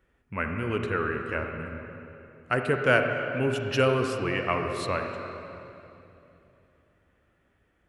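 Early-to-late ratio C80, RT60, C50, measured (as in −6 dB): 5.0 dB, 2.9 s, 4.0 dB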